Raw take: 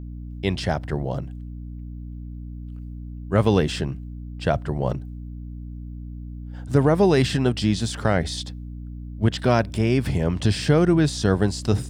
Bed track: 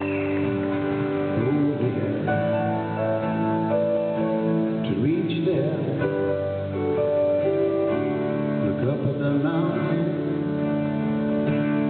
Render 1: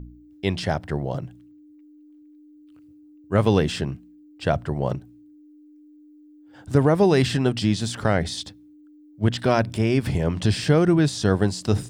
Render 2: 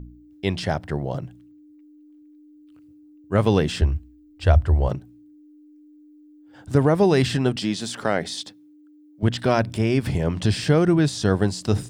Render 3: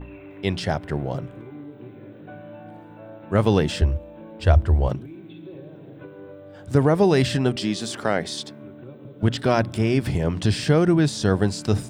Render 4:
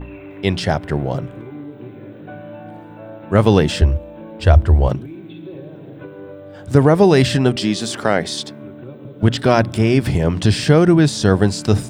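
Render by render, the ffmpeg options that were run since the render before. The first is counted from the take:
-af "bandreject=f=60:t=h:w=4,bandreject=f=120:t=h:w=4,bandreject=f=180:t=h:w=4,bandreject=f=240:t=h:w=4"
-filter_complex "[0:a]asettb=1/sr,asplit=3[s0][s1][s2];[s0]atrim=end=3.814[s3];[s1]atrim=start=3.81:end=4.89,asetpts=PTS-STARTPTS,afade=t=in:d=0.004:c=qsin,afade=t=out:st=1.076:d=0.004:c=qsin,lowshelf=f=110:t=q:w=3:g=12[s4];[s2]atrim=start=4.886[s5];[s3][s4]acrossfade=d=0.004:c1=hsin:c2=qsin[s6];[s6][s5]acrossfade=d=0.004:c1=qsin:c2=hsin,asettb=1/sr,asplit=3[s7][s8][s9];[s7]atrim=end=7.564[s10];[s8]atrim=start=7.56:end=9.23,asetpts=PTS-STARTPTS,afade=t=in:d=0.004:c=qsin,afade=t=out:st=1.666:d=0.004:c=qsin,highpass=220[s11];[s9]atrim=start=9.226[s12];[s10][s11]acrossfade=d=0.004:c1=hsin:c2=qsin[s13];[s13][s12]acrossfade=d=0.004:c1=qsin:c2=hsin"
-filter_complex "[1:a]volume=0.126[s0];[0:a][s0]amix=inputs=2:normalize=0"
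-af "volume=2,alimiter=limit=0.891:level=0:latency=1"

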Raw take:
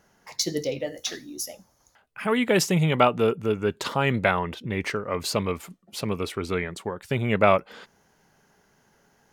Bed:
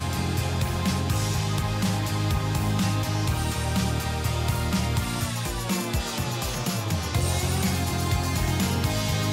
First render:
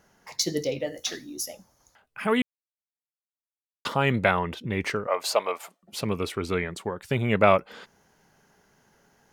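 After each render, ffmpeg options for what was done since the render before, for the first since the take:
-filter_complex "[0:a]asettb=1/sr,asplit=3[s0][s1][s2];[s0]atrim=end=5.074[s3];[s1]atrim=start=5.07:end=5.83,asetpts=PTS-STARTPTS,afade=t=in:d=0.004:c=qsin,afade=t=out:st=0.756:d=0.004:c=qsin,highpass=f=670:t=q:w=2.5[s4];[s2]atrim=start=5.826[s5];[s3][s4]acrossfade=d=0.004:c1=hsin:c2=qsin[s6];[s6][s5]acrossfade=d=0.004:c1=qsin:c2=hsin,asplit=3[s7][s8][s9];[s7]atrim=end=2.42,asetpts=PTS-STARTPTS,afade=t=out:st=2.416:d=0.004:c=hsin[s10];[s8]atrim=start=2.42:end=3.85,asetpts=PTS-STARTPTS,volume=0[s11];[s9]atrim=start=3.85,asetpts=PTS-STARTPTS,afade=t=in:d=0.004:c=hsin[s12];[s10][s11][s12]concat=n=3:v=0:a=1"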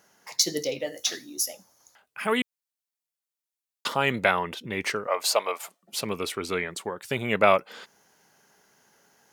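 -af "highpass=f=300:p=1,highshelf=f=3900:g=6.5"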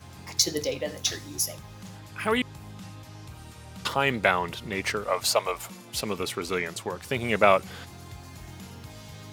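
-filter_complex "[1:a]volume=0.119[s0];[0:a][s0]amix=inputs=2:normalize=0"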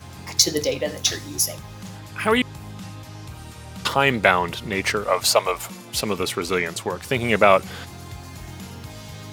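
-af "volume=2,alimiter=limit=0.891:level=0:latency=1"

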